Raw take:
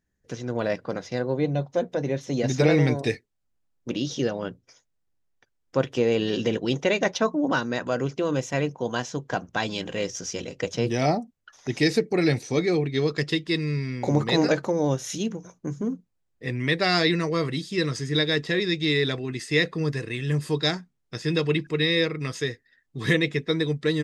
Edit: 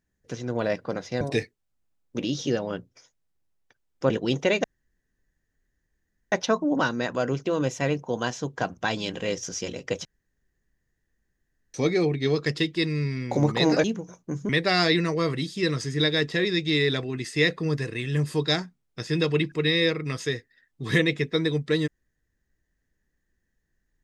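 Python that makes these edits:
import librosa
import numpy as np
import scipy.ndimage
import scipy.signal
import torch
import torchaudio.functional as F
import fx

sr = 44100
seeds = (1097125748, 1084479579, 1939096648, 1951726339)

y = fx.edit(x, sr, fx.cut(start_s=1.21, length_s=1.72),
    fx.cut(start_s=5.82, length_s=0.68),
    fx.insert_room_tone(at_s=7.04, length_s=1.68),
    fx.room_tone_fill(start_s=10.77, length_s=1.69),
    fx.cut(start_s=14.56, length_s=0.64),
    fx.cut(start_s=15.85, length_s=0.79), tone=tone)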